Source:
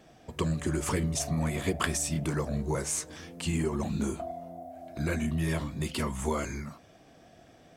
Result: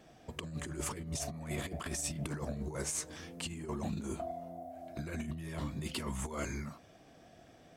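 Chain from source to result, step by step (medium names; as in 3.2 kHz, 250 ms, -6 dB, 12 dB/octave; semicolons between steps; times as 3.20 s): compressor with a negative ratio -32 dBFS, ratio -0.5; trim -5.5 dB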